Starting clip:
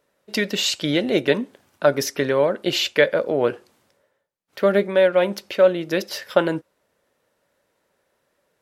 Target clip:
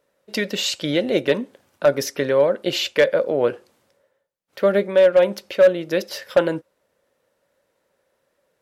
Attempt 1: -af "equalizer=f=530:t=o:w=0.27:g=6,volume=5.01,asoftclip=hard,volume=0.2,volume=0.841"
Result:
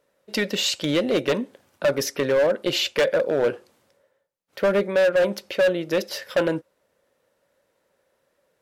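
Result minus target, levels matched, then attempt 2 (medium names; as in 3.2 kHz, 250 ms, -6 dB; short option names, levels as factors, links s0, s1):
overload inside the chain: distortion +12 dB
-af "equalizer=f=530:t=o:w=0.27:g=6,volume=2,asoftclip=hard,volume=0.501,volume=0.841"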